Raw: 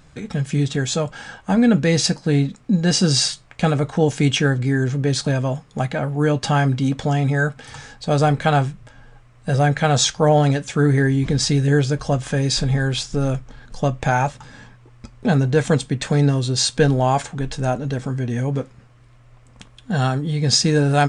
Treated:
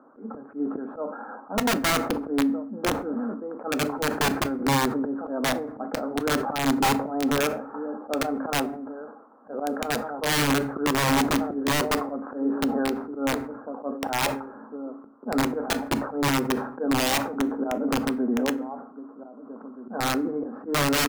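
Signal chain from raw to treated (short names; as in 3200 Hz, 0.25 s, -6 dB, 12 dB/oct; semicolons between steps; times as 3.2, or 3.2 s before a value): Chebyshev band-pass 220–1400 Hz, order 5; outdoor echo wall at 270 m, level -17 dB; auto swell 0.193 s; in parallel at -2.5 dB: compressor 12:1, threshold -30 dBFS, peak gain reduction 16.5 dB; on the sum: wrapped overs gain 16.5 dB; on a send at -14 dB: reverb RT60 0.65 s, pre-delay 4 ms; on the sum: sustainer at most 80 dB/s; gain -1 dB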